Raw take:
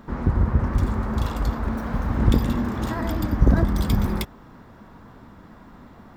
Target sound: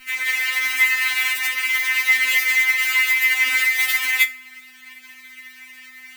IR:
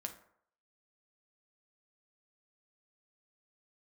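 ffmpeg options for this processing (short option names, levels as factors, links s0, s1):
-filter_complex "[0:a]acrusher=bits=5:dc=4:mix=0:aa=0.000001,highpass=f=2100:t=q:w=9.6,aeval=exprs='val(0)+0.00126*(sin(2*PI*50*n/s)+sin(2*PI*2*50*n/s)/2+sin(2*PI*3*50*n/s)/3+sin(2*PI*4*50*n/s)/4+sin(2*PI*5*50*n/s)/5)':c=same,asplit=2[s0][s1];[1:a]atrim=start_sample=2205,highshelf=f=9200:g=11[s2];[s1][s2]afir=irnorm=-1:irlink=0,volume=1.5[s3];[s0][s3]amix=inputs=2:normalize=0,afftfilt=real='re*3.46*eq(mod(b,12),0)':imag='im*3.46*eq(mod(b,12),0)':win_size=2048:overlap=0.75"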